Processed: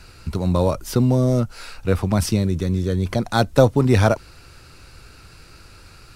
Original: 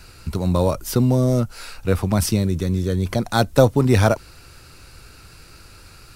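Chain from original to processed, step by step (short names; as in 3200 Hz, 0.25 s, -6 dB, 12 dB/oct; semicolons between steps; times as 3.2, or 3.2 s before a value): high shelf 10000 Hz -9 dB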